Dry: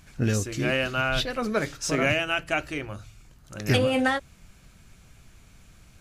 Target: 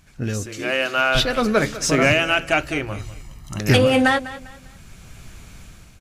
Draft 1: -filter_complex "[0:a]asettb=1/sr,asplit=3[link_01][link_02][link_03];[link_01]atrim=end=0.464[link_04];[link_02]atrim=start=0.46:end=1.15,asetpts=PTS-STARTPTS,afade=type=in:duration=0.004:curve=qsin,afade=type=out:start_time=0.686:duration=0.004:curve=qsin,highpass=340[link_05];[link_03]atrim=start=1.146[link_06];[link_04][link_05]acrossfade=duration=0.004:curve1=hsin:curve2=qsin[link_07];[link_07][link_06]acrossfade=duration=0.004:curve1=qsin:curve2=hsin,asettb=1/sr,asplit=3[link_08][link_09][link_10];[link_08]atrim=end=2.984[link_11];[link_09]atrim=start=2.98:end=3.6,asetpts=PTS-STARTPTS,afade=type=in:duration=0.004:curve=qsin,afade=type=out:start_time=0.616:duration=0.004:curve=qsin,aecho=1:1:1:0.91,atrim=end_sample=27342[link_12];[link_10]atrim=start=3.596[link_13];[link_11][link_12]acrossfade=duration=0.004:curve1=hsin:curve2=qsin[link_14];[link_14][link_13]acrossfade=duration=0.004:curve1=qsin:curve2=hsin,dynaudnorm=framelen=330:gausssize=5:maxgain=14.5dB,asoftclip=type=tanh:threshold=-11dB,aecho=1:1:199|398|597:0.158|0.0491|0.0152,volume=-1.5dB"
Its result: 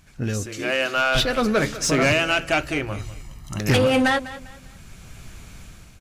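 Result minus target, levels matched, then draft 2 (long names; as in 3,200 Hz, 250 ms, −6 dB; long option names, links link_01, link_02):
soft clipping: distortion +11 dB
-filter_complex "[0:a]asettb=1/sr,asplit=3[link_01][link_02][link_03];[link_01]atrim=end=0.464[link_04];[link_02]atrim=start=0.46:end=1.15,asetpts=PTS-STARTPTS,afade=type=in:duration=0.004:curve=qsin,afade=type=out:start_time=0.686:duration=0.004:curve=qsin,highpass=340[link_05];[link_03]atrim=start=1.146[link_06];[link_04][link_05]acrossfade=duration=0.004:curve1=hsin:curve2=qsin[link_07];[link_07][link_06]acrossfade=duration=0.004:curve1=qsin:curve2=hsin,asettb=1/sr,asplit=3[link_08][link_09][link_10];[link_08]atrim=end=2.984[link_11];[link_09]atrim=start=2.98:end=3.6,asetpts=PTS-STARTPTS,afade=type=in:duration=0.004:curve=qsin,afade=type=out:start_time=0.616:duration=0.004:curve=qsin,aecho=1:1:1:0.91,atrim=end_sample=27342[link_12];[link_10]atrim=start=3.596[link_13];[link_11][link_12]acrossfade=duration=0.004:curve1=hsin:curve2=qsin[link_14];[link_14][link_13]acrossfade=duration=0.004:curve1=qsin:curve2=hsin,dynaudnorm=framelen=330:gausssize=5:maxgain=14.5dB,asoftclip=type=tanh:threshold=-2.5dB,aecho=1:1:199|398|597:0.158|0.0491|0.0152,volume=-1.5dB"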